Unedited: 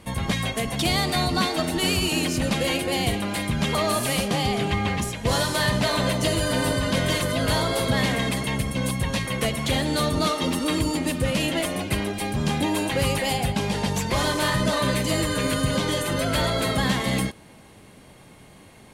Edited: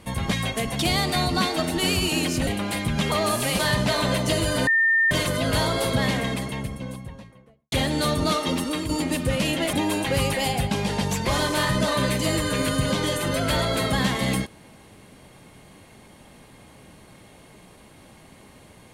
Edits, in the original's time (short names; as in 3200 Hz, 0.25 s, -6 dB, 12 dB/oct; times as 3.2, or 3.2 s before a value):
2.47–3.1 cut
4.22–5.54 cut
6.62–7.06 bleep 1810 Hz -16 dBFS
7.76–9.67 studio fade out
10.37–10.84 fade out equal-power, to -7.5 dB
11.68–12.58 cut